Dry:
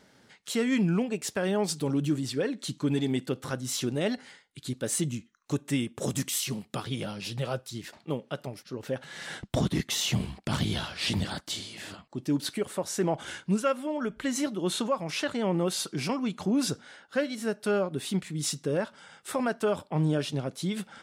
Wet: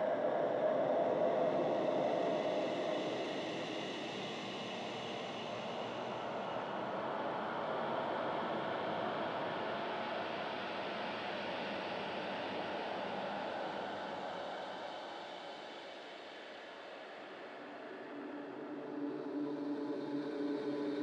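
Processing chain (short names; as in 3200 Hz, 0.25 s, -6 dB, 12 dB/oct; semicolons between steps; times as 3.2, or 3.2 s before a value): ladder band-pass 730 Hz, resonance 30%; Paulstretch 7.1×, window 1.00 s, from 9.43; transient shaper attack -2 dB, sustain +2 dB; gain +12 dB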